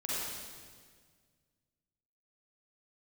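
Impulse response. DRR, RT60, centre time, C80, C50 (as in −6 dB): −8.0 dB, 1.7 s, 141 ms, −2.5 dB, −6.0 dB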